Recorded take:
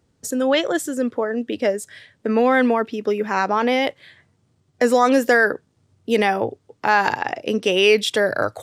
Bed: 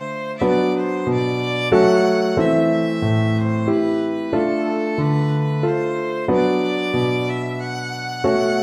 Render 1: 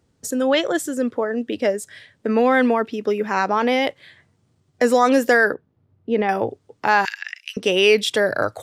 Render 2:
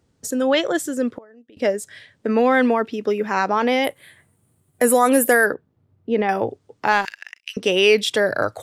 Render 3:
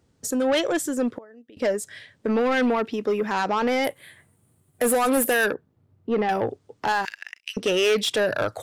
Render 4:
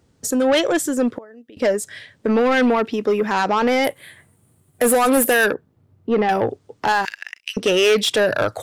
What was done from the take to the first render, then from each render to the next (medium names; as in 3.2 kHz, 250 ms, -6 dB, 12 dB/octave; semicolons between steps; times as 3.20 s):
5.54–6.29 s: tape spacing loss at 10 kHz 37 dB; 7.05–7.57 s: steep high-pass 1.7 kHz
1.08–1.57 s: inverted gate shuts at -22 dBFS, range -24 dB; 3.84–5.46 s: resonant high shelf 7.7 kHz +13 dB, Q 3; 6.92–7.47 s: power-law waveshaper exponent 1.4
saturation -16.5 dBFS, distortion -10 dB
trim +5 dB